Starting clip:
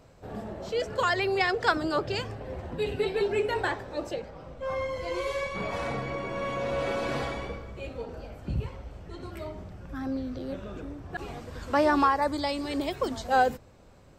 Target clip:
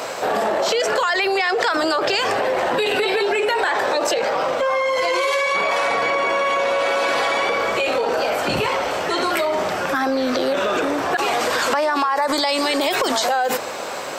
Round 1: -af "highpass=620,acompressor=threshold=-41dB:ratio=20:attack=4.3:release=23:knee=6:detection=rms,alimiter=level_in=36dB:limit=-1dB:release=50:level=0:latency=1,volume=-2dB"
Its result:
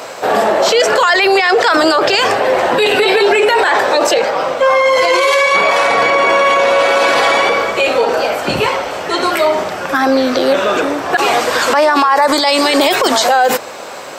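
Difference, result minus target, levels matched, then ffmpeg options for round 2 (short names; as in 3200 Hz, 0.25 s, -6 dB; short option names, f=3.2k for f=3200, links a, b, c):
compressor: peak gain reduction -10 dB
-af "highpass=620,acompressor=threshold=-51.5dB:ratio=20:attack=4.3:release=23:knee=6:detection=rms,alimiter=level_in=36dB:limit=-1dB:release=50:level=0:latency=1,volume=-2dB"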